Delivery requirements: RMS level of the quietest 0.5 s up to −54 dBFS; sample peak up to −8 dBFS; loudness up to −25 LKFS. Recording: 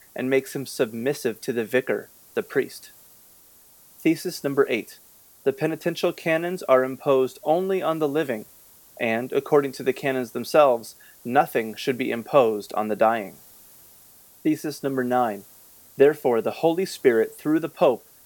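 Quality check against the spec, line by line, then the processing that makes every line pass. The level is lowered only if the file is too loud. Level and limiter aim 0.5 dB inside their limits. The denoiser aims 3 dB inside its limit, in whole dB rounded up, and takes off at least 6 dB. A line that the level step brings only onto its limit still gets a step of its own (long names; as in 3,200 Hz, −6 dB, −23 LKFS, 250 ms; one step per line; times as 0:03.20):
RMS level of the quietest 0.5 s −53 dBFS: out of spec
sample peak −4.5 dBFS: out of spec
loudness −23.5 LKFS: out of spec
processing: level −2 dB
brickwall limiter −8.5 dBFS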